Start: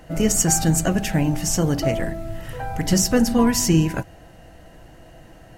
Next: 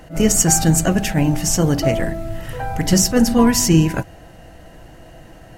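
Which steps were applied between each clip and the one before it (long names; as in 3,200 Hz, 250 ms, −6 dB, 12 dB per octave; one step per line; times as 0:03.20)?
level that may rise only so fast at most 220 dB per second
level +4 dB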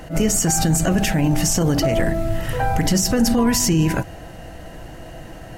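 boost into a limiter +13.5 dB
level −8.5 dB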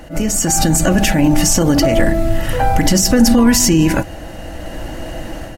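comb filter 3.5 ms, depth 39%
automatic gain control gain up to 9.5 dB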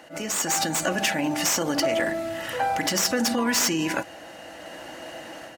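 stylus tracing distortion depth 0.067 ms
meter weighting curve A
level −6.5 dB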